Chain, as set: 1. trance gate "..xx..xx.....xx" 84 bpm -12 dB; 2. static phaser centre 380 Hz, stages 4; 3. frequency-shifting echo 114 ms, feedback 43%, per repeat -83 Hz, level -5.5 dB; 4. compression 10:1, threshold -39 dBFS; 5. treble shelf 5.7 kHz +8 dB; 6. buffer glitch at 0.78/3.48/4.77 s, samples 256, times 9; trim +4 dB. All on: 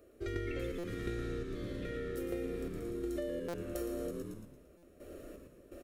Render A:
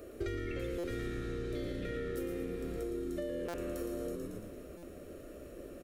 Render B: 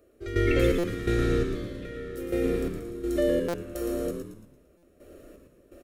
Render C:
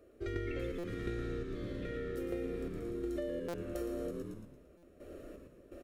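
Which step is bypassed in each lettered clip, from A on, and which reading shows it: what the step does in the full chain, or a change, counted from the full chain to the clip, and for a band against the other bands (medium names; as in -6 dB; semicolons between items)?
1, crest factor change -3.5 dB; 4, mean gain reduction 6.5 dB; 5, 8 kHz band -5.0 dB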